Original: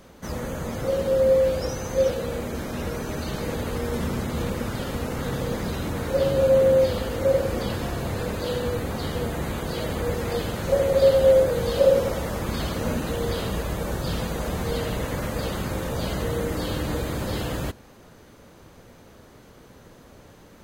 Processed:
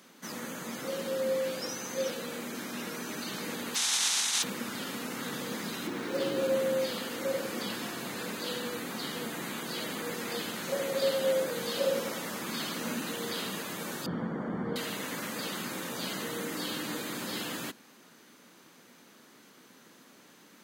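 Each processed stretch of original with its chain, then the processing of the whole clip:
3.74–4.42 s: spectral contrast reduction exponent 0.1 + cabinet simulation 140–9600 Hz, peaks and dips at 330 Hz -9 dB, 570 Hz -5 dB, 830 Hz +5 dB, 3.7 kHz +6 dB, 6 kHz +6 dB + hum notches 60/120/180/240/300/360/420/480 Hz
5.87–6.56 s: median filter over 5 samples + peaking EQ 360 Hz +8 dB 0.51 oct
14.06–14.76 s: Savitzky-Golay filter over 41 samples + tilt EQ -3 dB/octave
whole clip: high-pass 220 Hz 24 dB/octave; peaking EQ 550 Hz -12 dB 1.8 oct

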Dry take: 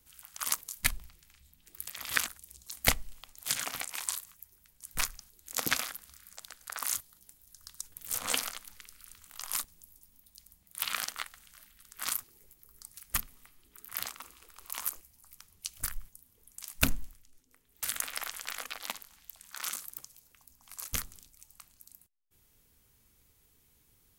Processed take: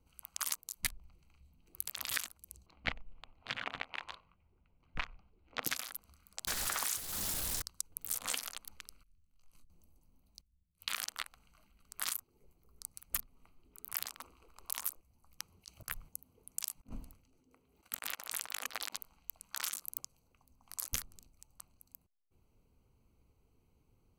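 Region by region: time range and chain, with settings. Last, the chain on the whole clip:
2.66–5.64 s: low-pass 3.1 kHz 24 dB/octave + delay 91 ms -23 dB
6.47–7.62 s: jump at every zero crossing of -29.5 dBFS + loudspeaker Doppler distortion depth 0.76 ms
9.03–9.70 s: amplifier tone stack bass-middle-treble 10-0-1 + doubling 23 ms -7.5 dB
10.41–10.88 s: amplifier tone stack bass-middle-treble 10-0-1 + doubling 12 ms -7 dB
15.39–18.96 s: high-pass 110 Hz 6 dB/octave + compressor with a negative ratio -43 dBFS, ratio -0.5
whole clip: local Wiener filter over 25 samples; tilt shelf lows -3 dB, about 1.3 kHz; compression 5:1, threshold -37 dBFS; trim +3.5 dB

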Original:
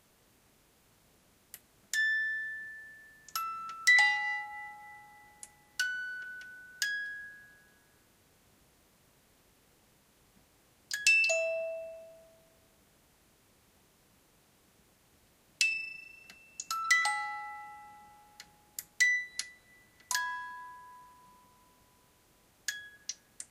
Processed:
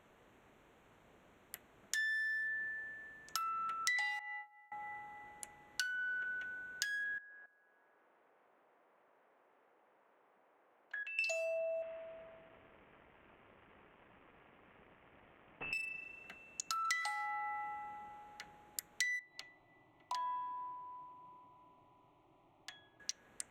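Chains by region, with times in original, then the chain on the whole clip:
4.19–4.72 s: expander -31 dBFS + compression 2.5:1, threshold -42 dBFS + high-pass 440 Hz 6 dB/octave
7.18–11.19 s: band-pass 620–2100 Hz + tilt shelf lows +5 dB, about 1.1 kHz + level held to a coarse grid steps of 15 dB
11.82–15.73 s: CVSD coder 16 kbps + compression 2:1, threshold -53 dBFS + band-stop 1.5 kHz, Q 26
19.19–23.00 s: low-pass 2.8 kHz + static phaser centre 320 Hz, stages 8
whole clip: local Wiener filter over 9 samples; tone controls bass -7 dB, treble -2 dB; compression 5:1, threshold -42 dBFS; trim +5 dB

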